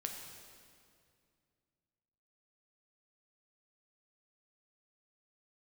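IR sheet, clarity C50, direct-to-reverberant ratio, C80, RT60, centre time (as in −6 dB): 4.0 dB, 2.0 dB, 5.0 dB, 2.3 s, 62 ms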